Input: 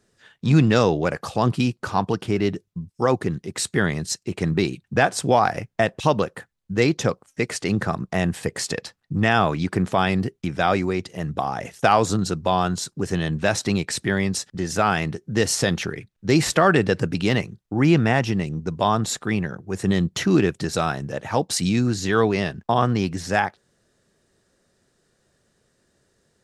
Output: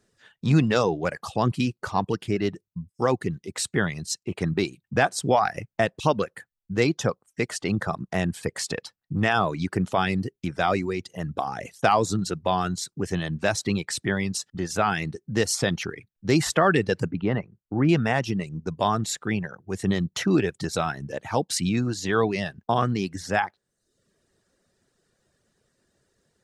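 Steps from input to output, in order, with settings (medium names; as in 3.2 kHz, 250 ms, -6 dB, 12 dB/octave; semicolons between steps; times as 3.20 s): 17.11–17.89 s: low-pass 1.5 kHz 12 dB/octave; reverb removal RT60 0.66 s; trim -2.5 dB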